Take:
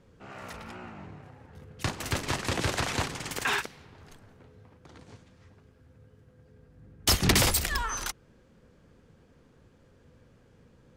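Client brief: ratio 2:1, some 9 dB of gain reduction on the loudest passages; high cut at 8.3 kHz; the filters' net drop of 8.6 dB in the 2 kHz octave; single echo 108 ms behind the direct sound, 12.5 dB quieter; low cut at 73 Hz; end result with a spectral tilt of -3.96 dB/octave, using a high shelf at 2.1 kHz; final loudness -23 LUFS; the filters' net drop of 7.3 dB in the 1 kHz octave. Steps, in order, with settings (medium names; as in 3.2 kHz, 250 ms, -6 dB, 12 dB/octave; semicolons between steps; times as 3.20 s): high-pass 73 Hz; low-pass 8.3 kHz; peaking EQ 1 kHz -6.5 dB; peaking EQ 2 kHz -6 dB; treble shelf 2.1 kHz -5 dB; compression 2:1, threshold -38 dBFS; delay 108 ms -12.5 dB; trim +17 dB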